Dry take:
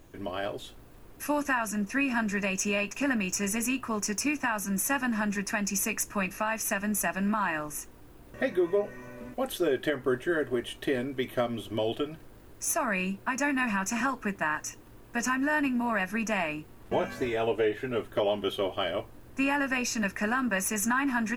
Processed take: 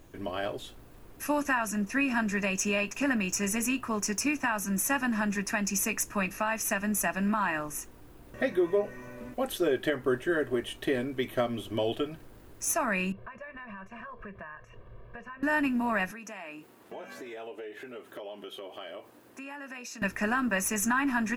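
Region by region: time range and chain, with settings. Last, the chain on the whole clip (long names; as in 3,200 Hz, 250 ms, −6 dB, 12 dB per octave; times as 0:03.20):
0:13.12–0:15.43: comb filter 1.8 ms, depth 99% + downward compressor, threshold −38 dBFS + high-frequency loss of the air 490 metres
0:16.11–0:20.02: downward compressor 5 to 1, threshold −39 dBFS + high-pass filter 260 Hz
whole clip: no processing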